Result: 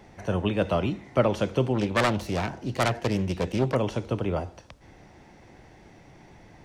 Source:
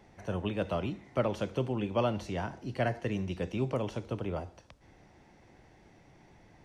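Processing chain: 1.74–3.75 s: self-modulated delay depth 0.56 ms; trim +7.5 dB

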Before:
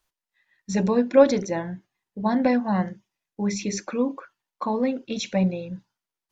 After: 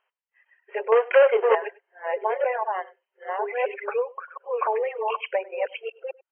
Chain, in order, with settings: chunks repeated in reverse 611 ms, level -3.5 dB; reverb removal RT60 1.3 s; compression 6:1, threshold -24 dBFS, peak gain reduction 14 dB; 0.92–1.55 s: waveshaping leveller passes 3; brick-wall FIR band-pass 380–3200 Hz; delay 99 ms -22.5 dB; trim +6 dB

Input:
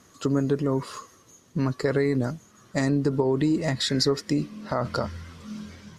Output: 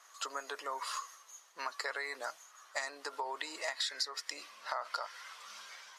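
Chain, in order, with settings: high-pass 790 Hz 24 dB/octave; compression 4:1, threshold -36 dBFS, peak gain reduction 13.5 dB; tape noise reduction on one side only decoder only; trim +1.5 dB

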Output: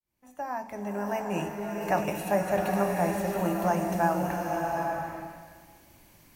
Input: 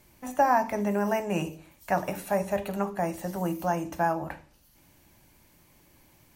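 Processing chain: fade-in on the opening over 1.99 s; swelling reverb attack 820 ms, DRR 0.5 dB

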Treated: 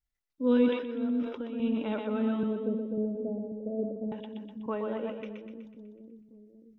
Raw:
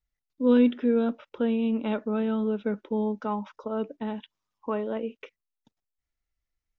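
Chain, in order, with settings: 0.68–1.60 s: compression 3:1, threshold -34 dBFS, peak gain reduction 11 dB; 2.43–4.12 s: steep low-pass 680 Hz 72 dB/octave; two-band feedback delay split 360 Hz, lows 542 ms, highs 124 ms, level -5 dB; decay stretcher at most 85 dB/s; trim -4.5 dB

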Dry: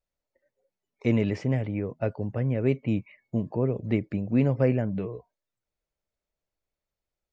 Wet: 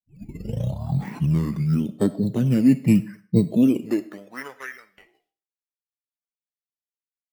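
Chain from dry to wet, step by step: tape start-up on the opening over 2.24 s; expander -46 dBFS; high-pass sweep 200 Hz -> 3.5 kHz, 3.55–4.80 s; in parallel at -6 dB: decimation with a swept rate 11×, swing 60% 0.82 Hz; on the sum: formant shift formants -5 st; on a send at -16 dB: reverberation RT60 0.45 s, pre-delay 20 ms; on the sum: trim +2.5 dB

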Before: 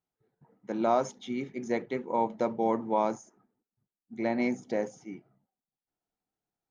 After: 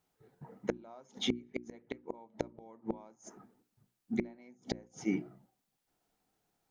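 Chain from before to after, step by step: inverted gate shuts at -27 dBFS, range -38 dB; hum notches 60/120/180/240/300/360 Hz; trim +11 dB

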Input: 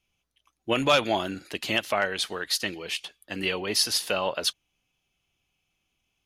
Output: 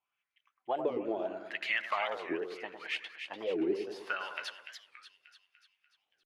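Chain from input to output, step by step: compression, threshold -25 dBFS, peak gain reduction 9 dB; wah-wah 0.75 Hz 370–2100 Hz, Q 4.6; two-band feedback delay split 1.7 kHz, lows 104 ms, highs 293 ms, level -7 dB; warped record 45 rpm, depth 250 cents; trim +5.5 dB

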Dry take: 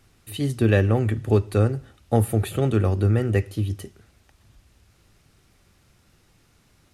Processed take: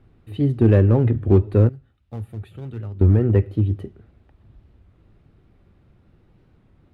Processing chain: block-companded coder 7-bit; FFT filter 340 Hz 0 dB, 3.7 kHz -16 dB, 5.9 kHz -29 dB; in parallel at -3.5 dB: hard clipper -16 dBFS, distortion -12 dB; 1.69–3.03 s: on the sum: amplifier tone stack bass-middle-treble 5-5-5; warped record 33 1/3 rpm, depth 160 cents; trim +1 dB

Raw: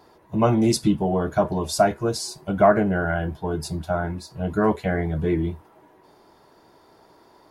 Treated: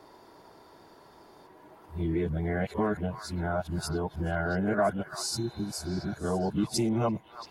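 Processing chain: reverse the whole clip; compression 2:1, threshold -31 dBFS, peak gain reduction 11 dB; spectral replace 5.26–6.11 s, 400–4200 Hz both; repeats whose band climbs or falls 339 ms, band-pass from 1.3 kHz, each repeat 1.4 oct, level -7.5 dB

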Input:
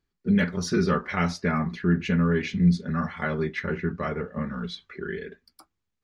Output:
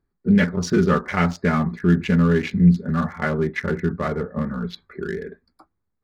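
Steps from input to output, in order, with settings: local Wiener filter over 15 samples; trim +5.5 dB

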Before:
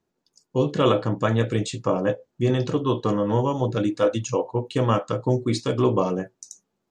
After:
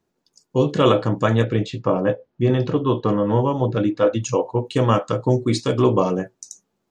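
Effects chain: 1.44–4.23 s: distance through air 180 m; trim +3.5 dB

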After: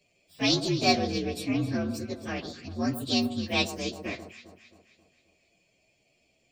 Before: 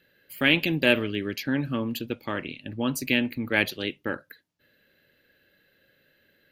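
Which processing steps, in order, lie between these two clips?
frequency axis rescaled in octaves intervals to 121%; echo whose repeats swap between lows and highs 133 ms, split 1.3 kHz, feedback 67%, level -10 dB

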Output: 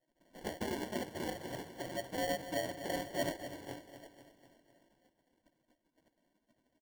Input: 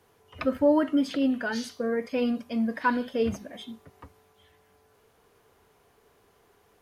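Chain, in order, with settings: low-pass that closes with the level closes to 790 Hz, closed at -24.5 dBFS; spectral gate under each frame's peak -20 dB weak; in parallel at +1.5 dB: compression, threshold -54 dBFS, peak gain reduction 13 dB; on the sum: rippled Chebyshev low-pass 1 kHz, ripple 9 dB; sample-and-hold 35×; on a send: feedback delay 248 ms, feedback 55%, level -12 dB; on the sum: trim +11 dB

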